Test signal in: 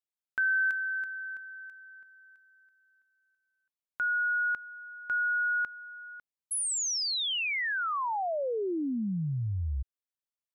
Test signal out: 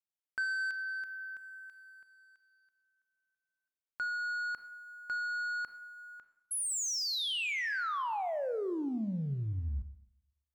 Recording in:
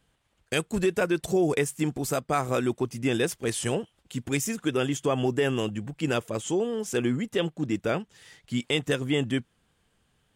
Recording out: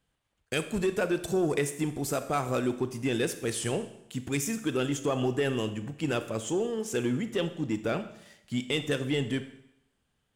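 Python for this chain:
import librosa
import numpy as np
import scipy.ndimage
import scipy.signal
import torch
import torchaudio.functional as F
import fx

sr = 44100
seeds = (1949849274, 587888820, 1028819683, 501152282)

y = fx.leveller(x, sr, passes=1)
y = fx.rev_schroeder(y, sr, rt60_s=0.78, comb_ms=28, drr_db=10.0)
y = F.gain(torch.from_numpy(y), -6.0).numpy()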